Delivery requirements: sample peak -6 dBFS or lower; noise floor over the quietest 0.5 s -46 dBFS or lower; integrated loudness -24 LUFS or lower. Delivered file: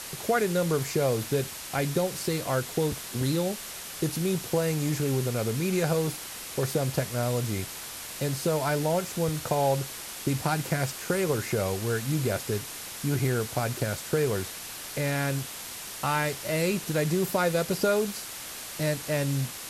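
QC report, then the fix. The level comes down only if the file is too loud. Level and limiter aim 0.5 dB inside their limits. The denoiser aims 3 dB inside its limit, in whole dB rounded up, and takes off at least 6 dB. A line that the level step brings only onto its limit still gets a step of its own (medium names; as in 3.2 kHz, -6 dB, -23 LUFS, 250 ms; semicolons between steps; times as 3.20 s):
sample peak -12.5 dBFS: pass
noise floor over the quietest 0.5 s -39 dBFS: fail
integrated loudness -28.5 LUFS: pass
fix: noise reduction 10 dB, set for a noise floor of -39 dBFS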